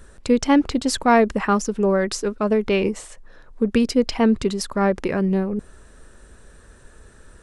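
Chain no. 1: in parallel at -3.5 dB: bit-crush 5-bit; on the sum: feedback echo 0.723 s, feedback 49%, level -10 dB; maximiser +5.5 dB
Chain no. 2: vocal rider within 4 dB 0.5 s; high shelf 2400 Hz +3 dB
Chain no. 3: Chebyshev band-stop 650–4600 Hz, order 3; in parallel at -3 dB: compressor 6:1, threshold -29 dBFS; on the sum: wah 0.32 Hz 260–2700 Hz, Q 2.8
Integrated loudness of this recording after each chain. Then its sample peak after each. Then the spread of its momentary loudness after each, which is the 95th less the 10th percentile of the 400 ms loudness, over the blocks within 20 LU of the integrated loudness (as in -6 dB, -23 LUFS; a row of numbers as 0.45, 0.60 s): -12.5, -20.5, -28.0 LUFS; -1.0, -7.0, -12.5 dBFS; 15, 6, 19 LU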